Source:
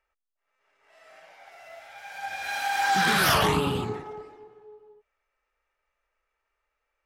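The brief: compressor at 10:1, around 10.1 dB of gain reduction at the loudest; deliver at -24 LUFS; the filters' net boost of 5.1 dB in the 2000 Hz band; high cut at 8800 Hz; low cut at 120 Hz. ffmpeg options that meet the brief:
-af "highpass=120,lowpass=8.8k,equalizer=f=2k:t=o:g=7,acompressor=threshold=-26dB:ratio=10,volume=6.5dB"

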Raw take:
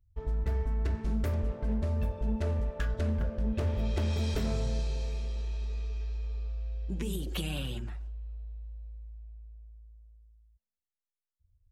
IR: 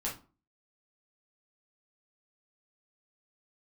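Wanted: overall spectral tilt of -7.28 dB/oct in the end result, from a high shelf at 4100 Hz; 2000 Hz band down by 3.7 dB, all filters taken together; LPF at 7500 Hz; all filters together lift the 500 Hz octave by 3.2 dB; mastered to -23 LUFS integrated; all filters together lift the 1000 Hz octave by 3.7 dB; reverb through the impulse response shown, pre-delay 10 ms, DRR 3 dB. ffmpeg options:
-filter_complex "[0:a]lowpass=7.5k,equalizer=f=500:t=o:g=3,equalizer=f=1k:t=o:g=5,equalizer=f=2k:t=o:g=-6,highshelf=f=4.1k:g=-3.5,asplit=2[a][b];[1:a]atrim=start_sample=2205,adelay=10[c];[b][c]afir=irnorm=-1:irlink=0,volume=-6dB[d];[a][d]amix=inputs=2:normalize=0,volume=9.5dB"

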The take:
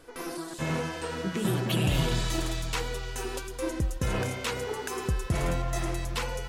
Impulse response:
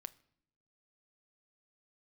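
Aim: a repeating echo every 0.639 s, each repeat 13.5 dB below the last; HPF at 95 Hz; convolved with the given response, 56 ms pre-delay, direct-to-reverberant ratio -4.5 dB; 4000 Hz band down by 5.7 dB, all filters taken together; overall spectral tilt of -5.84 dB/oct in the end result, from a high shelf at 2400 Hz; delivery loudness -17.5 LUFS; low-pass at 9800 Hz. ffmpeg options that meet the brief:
-filter_complex "[0:a]highpass=95,lowpass=9.8k,highshelf=f=2.4k:g=-3.5,equalizer=f=4k:t=o:g=-4.5,aecho=1:1:639|1278:0.211|0.0444,asplit=2[a][b];[1:a]atrim=start_sample=2205,adelay=56[c];[b][c]afir=irnorm=-1:irlink=0,volume=9.5dB[d];[a][d]amix=inputs=2:normalize=0,volume=9dB"

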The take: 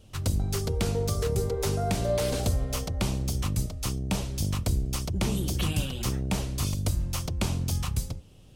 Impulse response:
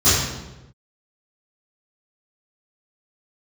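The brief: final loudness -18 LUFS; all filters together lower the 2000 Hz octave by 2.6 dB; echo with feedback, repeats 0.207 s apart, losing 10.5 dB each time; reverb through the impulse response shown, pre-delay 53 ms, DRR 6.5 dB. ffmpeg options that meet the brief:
-filter_complex "[0:a]equalizer=f=2k:t=o:g=-3.5,aecho=1:1:207|414|621:0.299|0.0896|0.0269,asplit=2[a][b];[1:a]atrim=start_sample=2205,adelay=53[c];[b][c]afir=irnorm=-1:irlink=0,volume=-28dB[d];[a][d]amix=inputs=2:normalize=0,volume=5.5dB"

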